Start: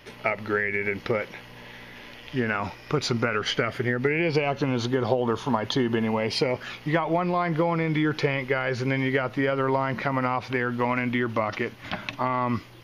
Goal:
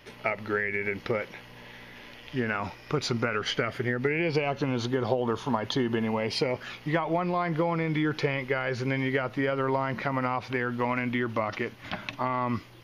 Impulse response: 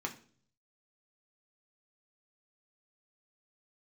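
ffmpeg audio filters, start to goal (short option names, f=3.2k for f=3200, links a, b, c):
-af "volume=-3dB"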